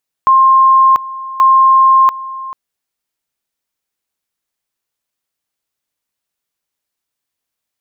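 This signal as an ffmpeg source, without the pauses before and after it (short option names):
-f lavfi -i "aevalsrc='pow(10,(-4.5-17.5*gte(mod(t,1.13),0.69))/20)*sin(2*PI*1060*t)':d=2.26:s=44100"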